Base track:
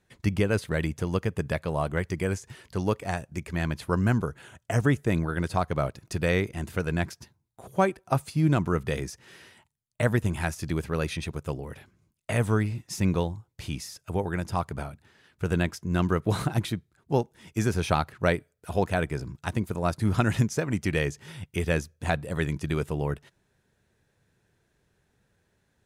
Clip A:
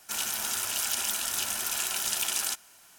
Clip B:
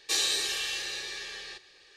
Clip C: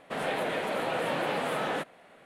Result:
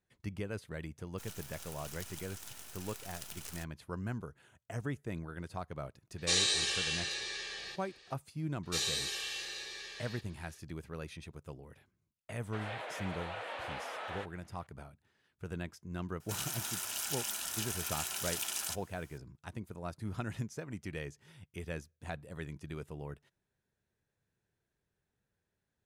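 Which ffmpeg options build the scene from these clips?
ffmpeg -i bed.wav -i cue0.wav -i cue1.wav -i cue2.wav -filter_complex "[1:a]asplit=2[link_01][link_02];[2:a]asplit=2[link_03][link_04];[0:a]volume=-15dB[link_05];[link_01]acrusher=bits=4:dc=4:mix=0:aa=0.000001[link_06];[link_03]aresample=22050,aresample=44100[link_07];[3:a]highpass=660,lowpass=6800[link_08];[link_06]atrim=end=2.98,asetpts=PTS-STARTPTS,volume=-15dB,afade=type=in:duration=0.004:curve=hsin,afade=type=out:start_time=2.976:duration=0.004:curve=hsin,adelay=1090[link_09];[link_07]atrim=end=1.96,asetpts=PTS-STARTPTS,volume=-2dB,afade=type=in:duration=0.004:curve=hsin,afade=type=out:start_time=1.956:duration=0.004:curve=hsin,adelay=272538S[link_10];[link_04]atrim=end=1.96,asetpts=PTS-STARTPTS,volume=-7dB,afade=type=in:duration=0.004:curve=hsin,afade=type=out:start_time=1.956:duration=0.004:curve=hsin,adelay=8630[link_11];[link_08]atrim=end=2.25,asetpts=PTS-STARTPTS,volume=-9dB,afade=type=in:duration=0.004:curve=hsin,afade=type=out:start_time=2.246:duration=0.004:curve=hsin,adelay=12420[link_12];[link_02]atrim=end=2.98,asetpts=PTS-STARTPTS,volume=-8dB,afade=type=in:duration=0.004:curve=hsin,afade=type=out:start_time=2.976:duration=0.004:curve=hsin,adelay=714420S[link_13];[link_05][link_09][link_10][link_11][link_12][link_13]amix=inputs=6:normalize=0" out.wav

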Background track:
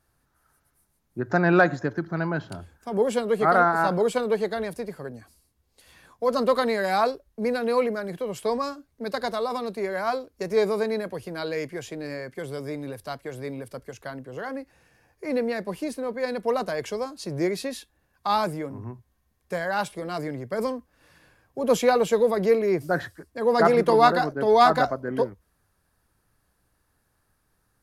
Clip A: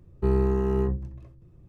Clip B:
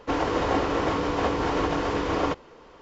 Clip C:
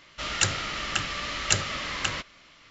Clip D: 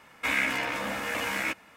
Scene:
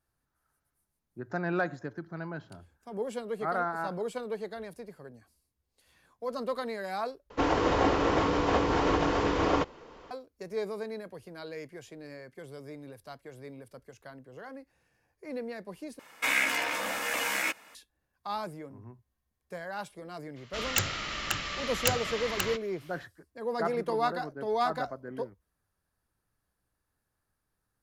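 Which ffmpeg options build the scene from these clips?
ffmpeg -i bed.wav -i cue0.wav -i cue1.wav -i cue2.wav -i cue3.wav -filter_complex "[0:a]volume=-11.5dB[link_01];[4:a]bass=frequency=250:gain=-12,treble=frequency=4000:gain=6[link_02];[3:a]aeval=exprs='(mod(2.82*val(0)+1,2)-1)/2.82':channel_layout=same[link_03];[link_01]asplit=3[link_04][link_05][link_06];[link_04]atrim=end=7.304[link_07];[2:a]atrim=end=2.81,asetpts=PTS-STARTPTS,volume=-1dB[link_08];[link_05]atrim=start=10.106:end=15.994[link_09];[link_02]atrim=end=1.76,asetpts=PTS-STARTPTS,volume=-0.5dB[link_10];[link_06]atrim=start=17.746[link_11];[link_03]atrim=end=2.7,asetpts=PTS-STARTPTS,volume=-3.5dB,afade=type=in:duration=0.02,afade=type=out:start_time=2.68:duration=0.02,adelay=20350[link_12];[link_07][link_08]acrossfade=duration=0.004:curve1=hsin:curve2=hsin[link_13];[link_13][link_09]acrossfade=duration=0.004:curve1=hsin:curve2=hsin[link_14];[link_14][link_10]acrossfade=duration=0.004:curve1=hsin:curve2=hsin[link_15];[link_15][link_11]acrossfade=duration=0.004:curve1=hsin:curve2=hsin[link_16];[link_16][link_12]amix=inputs=2:normalize=0" out.wav

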